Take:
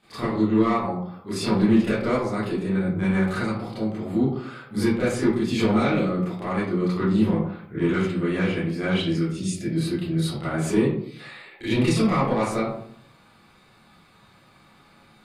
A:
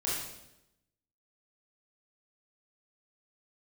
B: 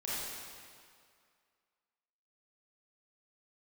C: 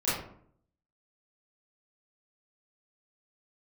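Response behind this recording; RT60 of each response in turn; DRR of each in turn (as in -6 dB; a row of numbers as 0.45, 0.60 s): C; 0.90, 2.2, 0.60 s; -7.5, -9.0, -12.5 dB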